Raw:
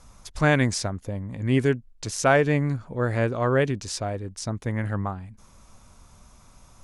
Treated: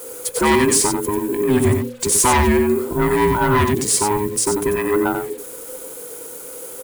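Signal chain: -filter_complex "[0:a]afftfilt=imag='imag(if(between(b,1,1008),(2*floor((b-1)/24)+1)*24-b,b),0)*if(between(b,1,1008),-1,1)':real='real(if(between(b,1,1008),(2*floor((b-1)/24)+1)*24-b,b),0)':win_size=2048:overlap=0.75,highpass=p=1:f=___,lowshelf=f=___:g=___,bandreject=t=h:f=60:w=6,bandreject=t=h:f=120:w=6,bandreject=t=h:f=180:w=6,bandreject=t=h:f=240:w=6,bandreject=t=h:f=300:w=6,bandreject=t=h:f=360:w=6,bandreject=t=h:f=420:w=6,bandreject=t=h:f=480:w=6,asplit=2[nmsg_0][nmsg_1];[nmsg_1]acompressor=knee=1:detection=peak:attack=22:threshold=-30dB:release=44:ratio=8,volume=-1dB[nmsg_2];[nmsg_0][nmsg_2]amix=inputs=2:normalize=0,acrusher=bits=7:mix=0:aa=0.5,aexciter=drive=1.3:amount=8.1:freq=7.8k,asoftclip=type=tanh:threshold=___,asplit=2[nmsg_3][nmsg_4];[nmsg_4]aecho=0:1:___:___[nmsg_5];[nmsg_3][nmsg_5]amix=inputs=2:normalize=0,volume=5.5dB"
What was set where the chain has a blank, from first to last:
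120, 200, 7, -16.5dB, 92, 0.473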